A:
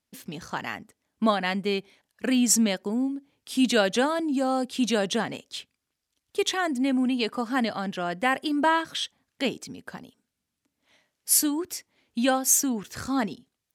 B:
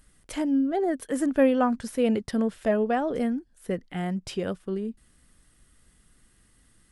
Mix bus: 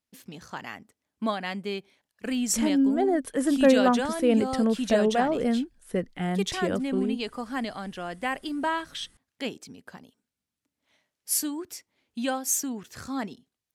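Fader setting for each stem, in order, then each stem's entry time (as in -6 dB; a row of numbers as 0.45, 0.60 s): -5.5, +1.5 dB; 0.00, 2.25 s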